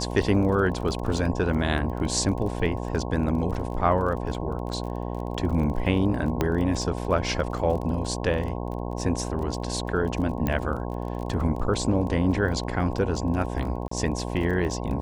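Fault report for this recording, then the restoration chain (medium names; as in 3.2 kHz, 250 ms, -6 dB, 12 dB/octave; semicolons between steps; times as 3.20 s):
buzz 60 Hz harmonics 18 -31 dBFS
crackle 25 per s -33 dBFS
6.41 s: pop -10 dBFS
10.47 s: pop -13 dBFS
13.88–13.91 s: dropout 34 ms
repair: de-click; de-hum 60 Hz, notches 18; interpolate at 13.88 s, 34 ms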